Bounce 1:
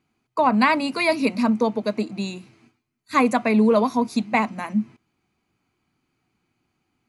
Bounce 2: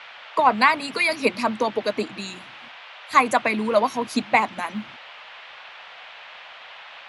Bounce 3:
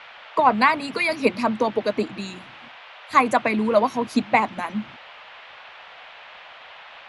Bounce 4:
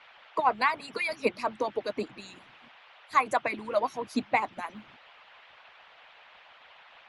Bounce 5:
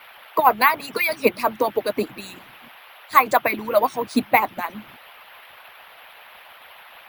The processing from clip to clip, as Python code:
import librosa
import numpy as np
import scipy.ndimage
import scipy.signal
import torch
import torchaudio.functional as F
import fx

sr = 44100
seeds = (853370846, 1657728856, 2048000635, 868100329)

y1 = fx.hpss(x, sr, part='harmonic', gain_db=-14)
y1 = fx.dmg_noise_band(y1, sr, seeds[0], low_hz=590.0, high_hz=3300.0, level_db=-47.0)
y1 = y1 * librosa.db_to_amplitude(4.5)
y2 = fx.tilt_eq(y1, sr, slope=-1.5)
y3 = fx.hpss(y2, sr, part='harmonic', gain_db=-14)
y3 = y3 * librosa.db_to_amplitude(-6.5)
y4 = np.repeat(y3[::3], 3)[:len(y3)]
y4 = y4 * librosa.db_to_amplitude(9.0)